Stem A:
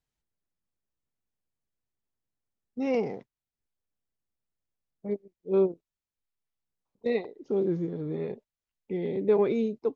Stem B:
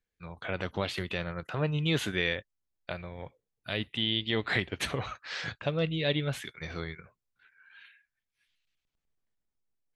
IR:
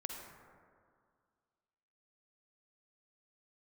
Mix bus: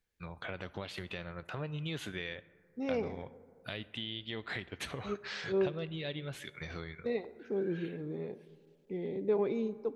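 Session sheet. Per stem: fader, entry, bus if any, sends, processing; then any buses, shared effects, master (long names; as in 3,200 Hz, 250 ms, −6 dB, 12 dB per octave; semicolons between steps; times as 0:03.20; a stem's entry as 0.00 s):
−8.5 dB, 0.00 s, send −10.5 dB, no processing
+1.0 dB, 0.00 s, send −13 dB, downward compressor 3 to 1, threshold −43 dBFS, peak gain reduction 15 dB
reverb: on, RT60 2.1 s, pre-delay 42 ms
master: no processing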